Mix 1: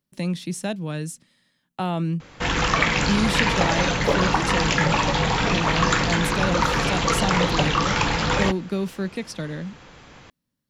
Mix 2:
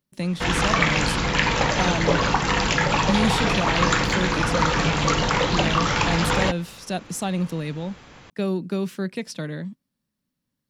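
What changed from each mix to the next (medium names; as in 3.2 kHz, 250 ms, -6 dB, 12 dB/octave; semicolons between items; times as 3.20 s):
background: entry -2.00 s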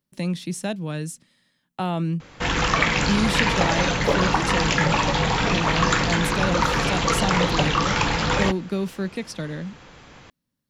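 background: entry +2.00 s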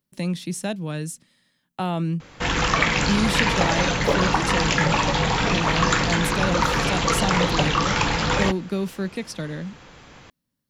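master: add treble shelf 9.7 kHz +4 dB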